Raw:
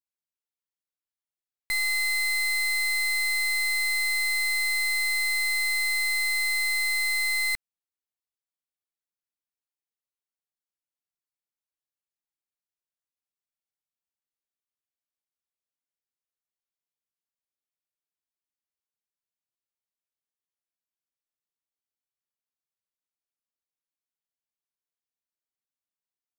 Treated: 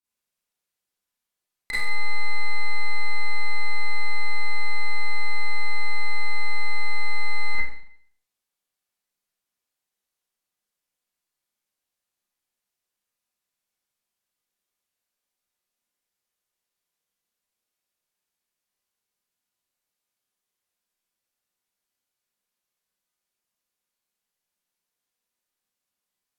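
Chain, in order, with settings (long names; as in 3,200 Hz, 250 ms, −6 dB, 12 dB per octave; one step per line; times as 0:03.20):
treble cut that deepens with the level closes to 1,400 Hz, closed at −30 dBFS
four-comb reverb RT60 0.61 s, combs from 31 ms, DRR −10 dB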